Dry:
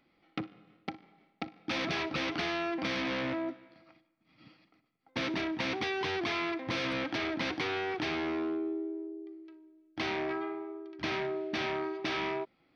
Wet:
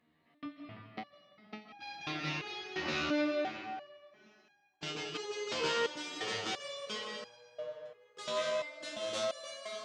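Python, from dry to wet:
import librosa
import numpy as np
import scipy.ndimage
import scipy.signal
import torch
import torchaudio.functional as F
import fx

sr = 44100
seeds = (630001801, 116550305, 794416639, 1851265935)

p1 = fx.speed_glide(x, sr, from_pct=86, to_pct=173)
p2 = scipy.signal.sosfilt(scipy.signal.butter(2, 54.0, 'highpass', fs=sr, output='sos'), p1)
p3 = p2 + fx.echo_split(p2, sr, split_hz=2400.0, low_ms=338, high_ms=87, feedback_pct=52, wet_db=-13.5, dry=0)
p4 = fx.rev_freeverb(p3, sr, rt60_s=1.5, hf_ratio=0.9, predelay_ms=115, drr_db=2.5)
p5 = fx.resonator_held(p4, sr, hz=2.9, low_hz=78.0, high_hz=810.0)
y = F.gain(torch.from_numpy(p5), 6.0).numpy()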